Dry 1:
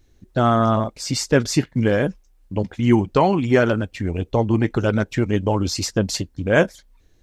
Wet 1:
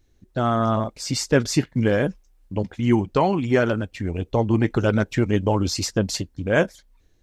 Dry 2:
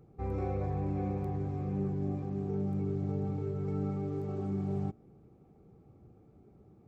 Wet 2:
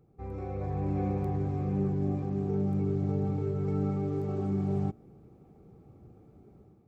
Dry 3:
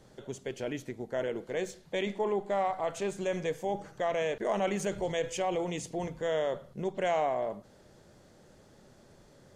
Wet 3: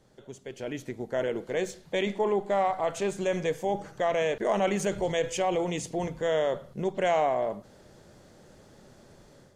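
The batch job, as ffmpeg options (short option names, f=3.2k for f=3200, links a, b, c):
-af "dynaudnorm=f=470:g=3:m=9dB,volume=-5dB"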